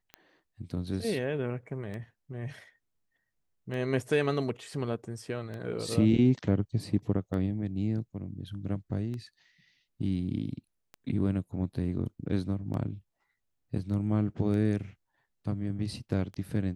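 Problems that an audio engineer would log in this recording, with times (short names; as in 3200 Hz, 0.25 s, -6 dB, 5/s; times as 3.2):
tick 33 1/3 rpm -27 dBFS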